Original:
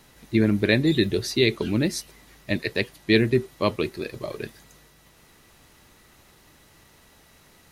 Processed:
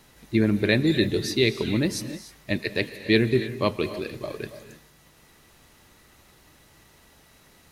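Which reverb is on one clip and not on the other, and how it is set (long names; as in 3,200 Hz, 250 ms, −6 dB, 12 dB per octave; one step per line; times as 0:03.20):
reverb whose tail is shaped and stops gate 330 ms rising, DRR 11 dB
level −1 dB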